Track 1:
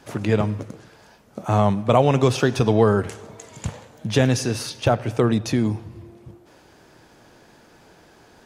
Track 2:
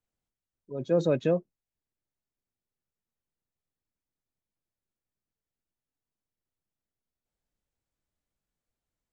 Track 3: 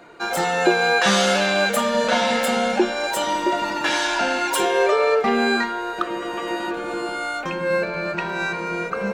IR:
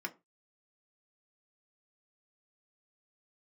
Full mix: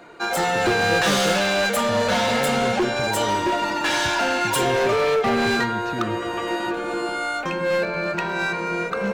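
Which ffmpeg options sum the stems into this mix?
-filter_complex "[0:a]lowpass=3300,alimiter=limit=0.188:level=0:latency=1,adelay=400,volume=0.447[s0];[1:a]volume=0.708[s1];[2:a]asoftclip=type=hard:threshold=0.126,volume=1.12[s2];[s0][s1][s2]amix=inputs=3:normalize=0"

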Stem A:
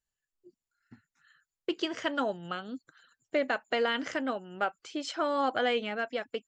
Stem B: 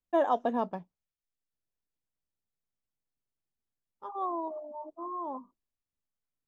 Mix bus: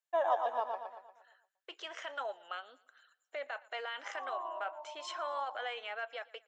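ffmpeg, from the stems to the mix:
-filter_complex "[0:a]bandreject=f=4700:w=5.9,alimiter=level_in=1.06:limit=0.0631:level=0:latency=1:release=24,volume=0.944,volume=0.708,asplit=3[s0][s1][s2];[s1]volume=0.0708[s3];[1:a]volume=0.75,asplit=2[s4][s5];[s5]volume=0.562[s6];[s2]apad=whole_len=285637[s7];[s4][s7]sidechaincompress=threshold=0.00794:ratio=8:attack=16:release=390[s8];[s3][s6]amix=inputs=2:normalize=0,aecho=0:1:117|234|351|468|585|702|819:1|0.47|0.221|0.104|0.0488|0.0229|0.0108[s9];[s0][s8][s9]amix=inputs=3:normalize=0,highpass=f=610:w=0.5412,highpass=f=610:w=1.3066,highshelf=f=6700:g=-7"

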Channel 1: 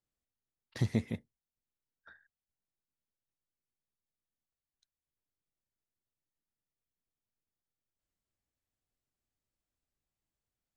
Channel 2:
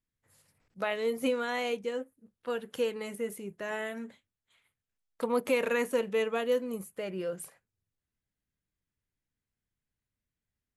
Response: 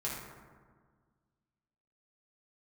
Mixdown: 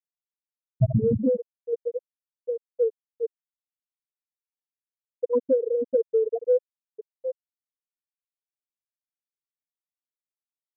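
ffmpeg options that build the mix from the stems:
-filter_complex "[0:a]alimiter=limit=0.075:level=0:latency=1:release=17,volume=1.26,asplit=2[s0][s1];[s1]volume=0.708[s2];[1:a]aemphasis=mode=reproduction:type=50fm,acontrast=63,volume=0.562[s3];[2:a]atrim=start_sample=2205[s4];[s2][s4]afir=irnorm=-1:irlink=0[s5];[s0][s3][s5]amix=inputs=3:normalize=0,afftfilt=real='re*gte(hypot(re,im),0.316)':imag='im*gte(hypot(re,im),0.316)':win_size=1024:overlap=0.75,acontrast=40"

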